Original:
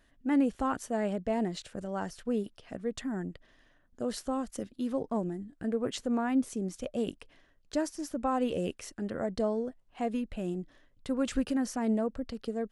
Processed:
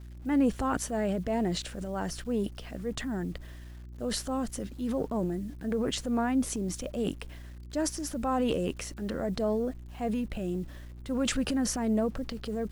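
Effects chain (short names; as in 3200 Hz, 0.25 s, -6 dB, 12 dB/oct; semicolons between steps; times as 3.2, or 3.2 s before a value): transient shaper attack -4 dB, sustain +8 dB; requantised 10-bit, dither none; buzz 60 Hz, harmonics 6, -46 dBFS -9 dB/oct; gain +1.5 dB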